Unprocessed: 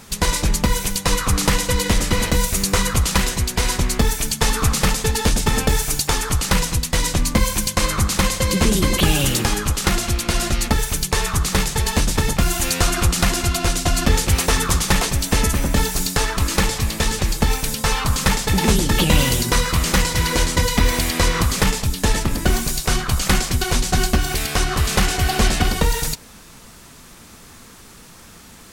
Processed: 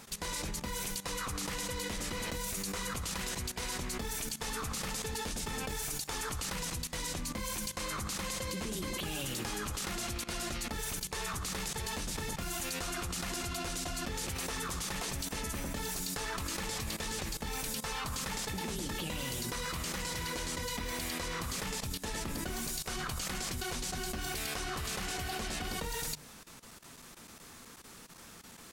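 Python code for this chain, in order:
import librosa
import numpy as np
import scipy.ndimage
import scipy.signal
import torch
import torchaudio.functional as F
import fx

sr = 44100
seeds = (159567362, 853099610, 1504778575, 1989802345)

y = fx.low_shelf(x, sr, hz=97.0, db=-8.5)
y = fx.hum_notches(y, sr, base_hz=50, count=4)
y = fx.level_steps(y, sr, step_db=15)
y = F.gain(torch.from_numpy(y), -7.0).numpy()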